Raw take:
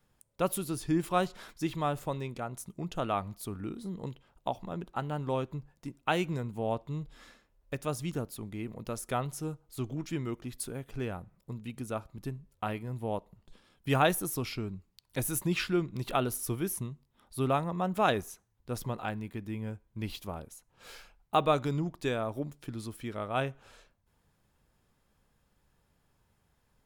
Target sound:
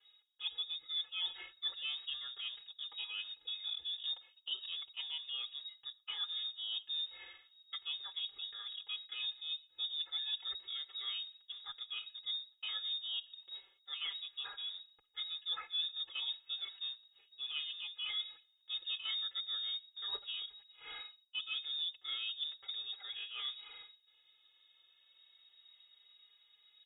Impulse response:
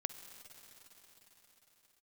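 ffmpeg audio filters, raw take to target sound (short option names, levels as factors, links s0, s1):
-filter_complex "[0:a]acrossover=split=2800[s0][s1];[s1]acompressor=threshold=0.00447:ratio=4:attack=1:release=60[s2];[s0][s2]amix=inputs=2:normalize=0,highshelf=f=2900:g=-5.5,aecho=1:1:2.4:1,areverse,acompressor=threshold=0.0112:ratio=12,areverse,acrusher=bits=6:mode=log:mix=0:aa=0.000001,asuperstop=centerf=1400:order=4:qfactor=6.4,asplit=2[s3][s4];[1:a]atrim=start_sample=2205,afade=t=out:st=0.17:d=0.01,atrim=end_sample=7938[s5];[s4][s5]afir=irnorm=-1:irlink=0,volume=0.422[s6];[s3][s6]amix=inputs=2:normalize=0,lowpass=f=3200:t=q:w=0.5098,lowpass=f=3200:t=q:w=0.6013,lowpass=f=3200:t=q:w=0.9,lowpass=f=3200:t=q:w=2.563,afreqshift=-3800,asplit=2[s7][s8];[s8]adelay=4.4,afreqshift=0.34[s9];[s7][s9]amix=inputs=2:normalize=1,volume=1.19"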